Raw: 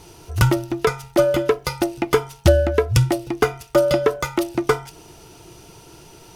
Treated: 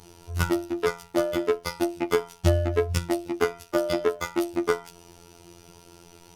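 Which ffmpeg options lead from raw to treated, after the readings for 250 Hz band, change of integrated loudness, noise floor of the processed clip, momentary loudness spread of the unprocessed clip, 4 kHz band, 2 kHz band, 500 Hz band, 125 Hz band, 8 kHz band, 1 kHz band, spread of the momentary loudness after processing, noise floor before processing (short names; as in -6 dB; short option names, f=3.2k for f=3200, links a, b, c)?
-4.5 dB, -6.5 dB, -53 dBFS, 6 LU, -6.5 dB, -6.0 dB, -6.5 dB, -8.5 dB, -6.5 dB, -6.5 dB, 5 LU, -46 dBFS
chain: -af "asoftclip=type=tanh:threshold=-4.5dB,afftfilt=real='hypot(re,im)*cos(PI*b)':imag='0':win_size=2048:overlap=0.75,volume=-2.5dB"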